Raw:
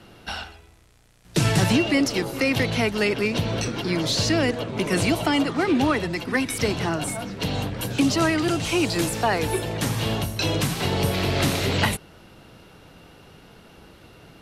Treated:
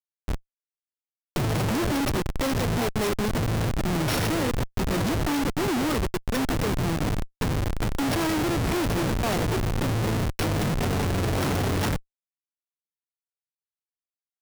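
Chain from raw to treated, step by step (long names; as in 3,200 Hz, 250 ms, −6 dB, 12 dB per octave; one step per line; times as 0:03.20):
samples sorted by size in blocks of 8 samples
comparator with hysteresis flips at −22.5 dBFS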